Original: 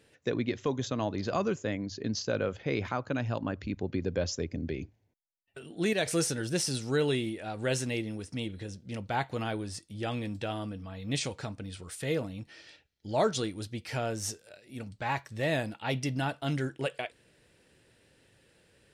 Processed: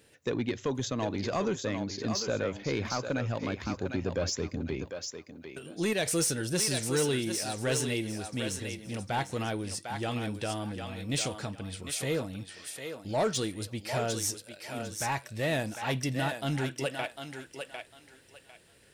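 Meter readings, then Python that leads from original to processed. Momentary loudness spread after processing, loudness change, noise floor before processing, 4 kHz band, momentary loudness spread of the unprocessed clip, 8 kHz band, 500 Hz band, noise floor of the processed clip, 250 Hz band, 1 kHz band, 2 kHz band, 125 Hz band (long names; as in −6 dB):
12 LU, +0.5 dB, −70 dBFS, +2.5 dB, 12 LU, +5.5 dB, 0.0 dB, −58 dBFS, 0.0 dB, +0.5 dB, +1.0 dB, 0.0 dB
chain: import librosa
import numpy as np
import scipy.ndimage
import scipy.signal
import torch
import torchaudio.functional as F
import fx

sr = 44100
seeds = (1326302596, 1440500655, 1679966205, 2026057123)

p1 = fx.high_shelf(x, sr, hz=8400.0, db=10.5)
p2 = 10.0 ** (-22.0 / 20.0) * np.tanh(p1 / 10.0 ** (-22.0 / 20.0))
p3 = p2 + fx.echo_thinned(p2, sr, ms=751, feedback_pct=25, hz=510.0, wet_db=-5.0, dry=0)
y = p3 * librosa.db_to_amplitude(1.0)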